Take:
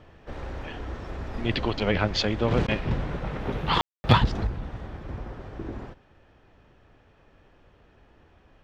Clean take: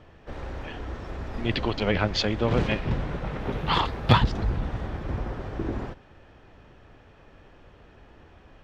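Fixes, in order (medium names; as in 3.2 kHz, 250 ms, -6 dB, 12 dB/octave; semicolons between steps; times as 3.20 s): room tone fill 3.81–4.04 s; interpolate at 2.67 s, 10 ms; trim 0 dB, from 4.47 s +5.5 dB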